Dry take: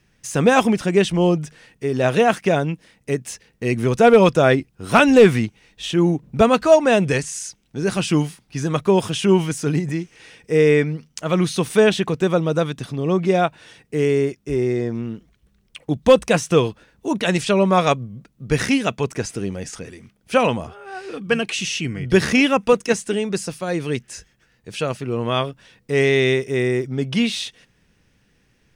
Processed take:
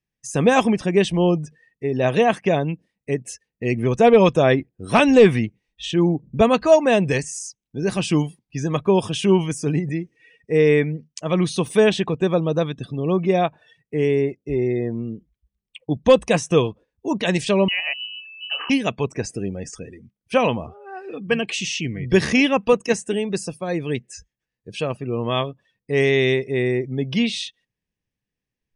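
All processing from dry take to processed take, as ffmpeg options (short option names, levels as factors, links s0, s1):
-filter_complex "[0:a]asettb=1/sr,asplit=3[s0][s1][s2];[s0]atrim=end=17.684[s3];[s1]atrim=start=17.68:end=18.7,asetpts=PTS-STARTPTS,afade=t=in:d=0.004:c=qsin,afade=t=out:st=1.016:d=0.004:c=qsin,acompressor=threshold=0.0562:ratio=2:attack=3.2:release=140:knee=1:detection=peak,aeval=exprs='val(0)+0.0141*sin(2*PI*470*n/s)':c=same,lowpass=f=2600:t=q:w=0.5098,lowpass=f=2600:t=q:w=0.6013,lowpass=f=2600:t=q:w=0.9,lowpass=f=2600:t=q:w=2.563,afreqshift=-3100[s4];[s2]atrim=start=18.696[s5];[s3][s4]acrossfade=d=0.004:c1=hsin:c2=qsin[s6];[s6][s5]acrossfade=d=0.004:c1=qsin:c2=hsin,afftdn=nr=24:nf=-39,bandreject=f=1400:w=5.3,volume=0.891"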